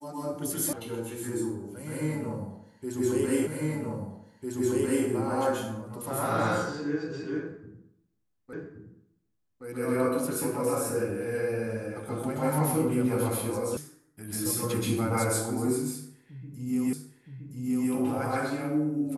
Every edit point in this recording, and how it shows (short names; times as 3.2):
0.73 sound cut off
3.47 repeat of the last 1.6 s
8.53 repeat of the last 1.12 s
13.77 sound cut off
16.93 repeat of the last 0.97 s